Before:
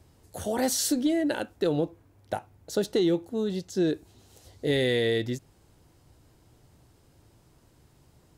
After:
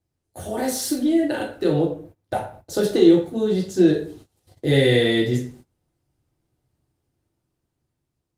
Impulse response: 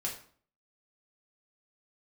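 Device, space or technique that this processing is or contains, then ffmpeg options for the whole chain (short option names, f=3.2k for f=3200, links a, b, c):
speakerphone in a meeting room: -filter_complex "[0:a]asplit=3[a][b][c];[a]afade=t=out:st=0.57:d=0.02[d];[b]adynamicequalizer=threshold=0.00631:dfrequency=8300:dqfactor=1.5:tfrequency=8300:tqfactor=1.5:attack=5:release=100:ratio=0.375:range=3:mode=cutabove:tftype=bell,afade=t=in:st=0.57:d=0.02,afade=t=out:st=1.1:d=0.02[e];[c]afade=t=in:st=1.1:d=0.02[f];[d][e][f]amix=inputs=3:normalize=0[g];[1:a]atrim=start_sample=2205[h];[g][h]afir=irnorm=-1:irlink=0,dynaudnorm=f=660:g=5:m=6.5dB,agate=range=-22dB:threshold=-42dB:ratio=16:detection=peak" -ar 48000 -c:a libopus -b:a 32k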